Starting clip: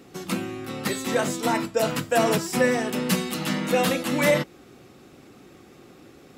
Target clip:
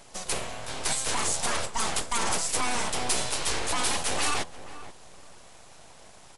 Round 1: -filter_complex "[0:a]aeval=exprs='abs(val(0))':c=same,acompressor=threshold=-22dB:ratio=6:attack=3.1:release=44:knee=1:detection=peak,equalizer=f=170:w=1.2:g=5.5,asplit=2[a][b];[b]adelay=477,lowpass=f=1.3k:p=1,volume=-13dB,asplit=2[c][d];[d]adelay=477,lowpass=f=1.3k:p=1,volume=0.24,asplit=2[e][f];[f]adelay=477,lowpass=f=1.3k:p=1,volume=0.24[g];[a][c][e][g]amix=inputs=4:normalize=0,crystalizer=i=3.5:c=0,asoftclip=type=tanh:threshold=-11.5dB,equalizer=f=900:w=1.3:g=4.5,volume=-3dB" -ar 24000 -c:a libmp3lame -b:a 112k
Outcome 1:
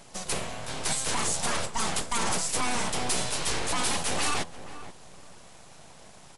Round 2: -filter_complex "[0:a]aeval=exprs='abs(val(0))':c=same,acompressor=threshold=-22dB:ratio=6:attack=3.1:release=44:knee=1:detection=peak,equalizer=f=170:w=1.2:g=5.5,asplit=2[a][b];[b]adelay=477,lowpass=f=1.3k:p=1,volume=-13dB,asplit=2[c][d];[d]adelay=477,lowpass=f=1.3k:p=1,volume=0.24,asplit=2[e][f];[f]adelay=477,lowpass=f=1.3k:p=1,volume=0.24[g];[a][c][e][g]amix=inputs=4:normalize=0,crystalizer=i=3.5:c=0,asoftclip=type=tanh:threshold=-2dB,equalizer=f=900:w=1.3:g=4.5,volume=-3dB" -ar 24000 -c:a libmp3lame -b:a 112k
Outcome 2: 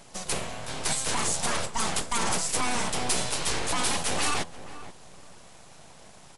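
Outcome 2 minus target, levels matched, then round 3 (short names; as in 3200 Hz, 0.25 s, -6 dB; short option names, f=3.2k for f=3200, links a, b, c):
125 Hz band +3.0 dB
-filter_complex "[0:a]aeval=exprs='abs(val(0))':c=same,acompressor=threshold=-22dB:ratio=6:attack=3.1:release=44:knee=1:detection=peak,asplit=2[a][b];[b]adelay=477,lowpass=f=1.3k:p=1,volume=-13dB,asplit=2[c][d];[d]adelay=477,lowpass=f=1.3k:p=1,volume=0.24,asplit=2[e][f];[f]adelay=477,lowpass=f=1.3k:p=1,volume=0.24[g];[a][c][e][g]amix=inputs=4:normalize=0,crystalizer=i=3.5:c=0,asoftclip=type=tanh:threshold=-2dB,equalizer=f=900:w=1.3:g=4.5,volume=-3dB" -ar 24000 -c:a libmp3lame -b:a 112k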